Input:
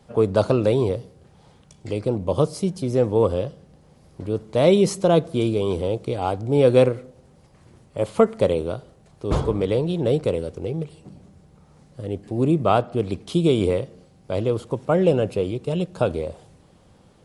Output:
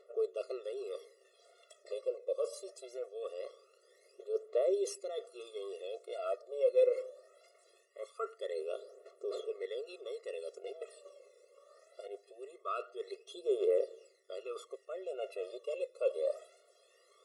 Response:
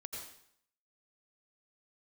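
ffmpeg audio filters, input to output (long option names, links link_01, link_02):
-af "areverse,acompressor=threshold=-29dB:ratio=8,areverse,aphaser=in_gain=1:out_gain=1:delay=2:decay=0.72:speed=0.22:type=triangular,afftfilt=real='re*eq(mod(floor(b*sr/1024/360),2),1)':imag='im*eq(mod(floor(b*sr/1024/360),2),1)':win_size=1024:overlap=0.75,volume=-4dB"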